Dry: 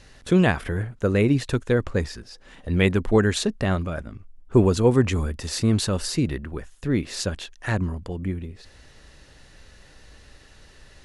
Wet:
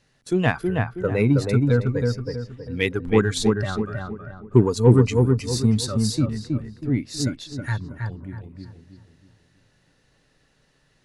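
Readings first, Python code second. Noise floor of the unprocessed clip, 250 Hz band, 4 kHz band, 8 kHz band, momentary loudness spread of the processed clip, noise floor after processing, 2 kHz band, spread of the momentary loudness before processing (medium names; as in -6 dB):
-51 dBFS, +1.0 dB, -0.5 dB, 0.0 dB, 15 LU, -64 dBFS, -0.5 dB, 14 LU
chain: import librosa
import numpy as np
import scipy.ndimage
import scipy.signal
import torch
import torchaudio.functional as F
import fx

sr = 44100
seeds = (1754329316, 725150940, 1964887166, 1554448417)

p1 = fx.low_shelf_res(x, sr, hz=100.0, db=-7.0, q=3.0)
p2 = fx.noise_reduce_blind(p1, sr, reduce_db=13)
p3 = fx.cheby_harmonics(p2, sr, harmonics=(8,), levels_db=(-35,), full_scale_db=-4.0)
y = p3 + fx.echo_filtered(p3, sr, ms=321, feedback_pct=39, hz=1700.0, wet_db=-3.0, dry=0)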